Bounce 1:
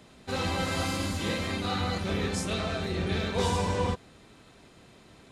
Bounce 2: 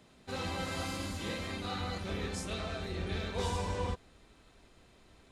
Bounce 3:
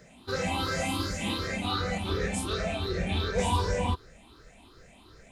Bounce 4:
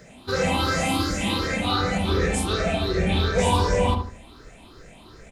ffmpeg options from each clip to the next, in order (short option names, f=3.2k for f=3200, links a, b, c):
-af "asubboost=boost=5.5:cutoff=56,volume=-7dB"
-af "afftfilt=real='re*pow(10,15/40*sin(2*PI*(0.56*log(max(b,1)*sr/1024/100)/log(2)-(2.7)*(pts-256)/sr)))':imag='im*pow(10,15/40*sin(2*PI*(0.56*log(max(b,1)*sr/1024/100)/log(2)-(2.7)*(pts-256)/sr)))':win_size=1024:overlap=0.75,volume=4.5dB"
-filter_complex "[0:a]asplit=2[a][b];[b]adelay=75,lowpass=f=1.2k:p=1,volume=-3.5dB,asplit=2[c][d];[d]adelay=75,lowpass=f=1.2k:p=1,volume=0.33,asplit=2[e][f];[f]adelay=75,lowpass=f=1.2k:p=1,volume=0.33,asplit=2[g][h];[h]adelay=75,lowpass=f=1.2k:p=1,volume=0.33[i];[a][c][e][g][i]amix=inputs=5:normalize=0,volume=6dB"